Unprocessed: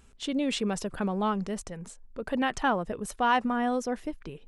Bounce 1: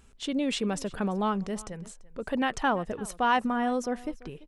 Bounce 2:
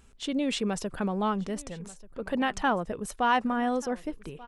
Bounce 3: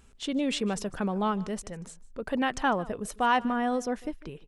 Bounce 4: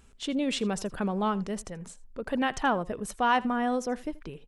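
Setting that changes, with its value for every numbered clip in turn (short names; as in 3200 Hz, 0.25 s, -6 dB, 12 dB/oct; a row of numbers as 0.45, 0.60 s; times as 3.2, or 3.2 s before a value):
echo, time: 339, 1186, 151, 81 ms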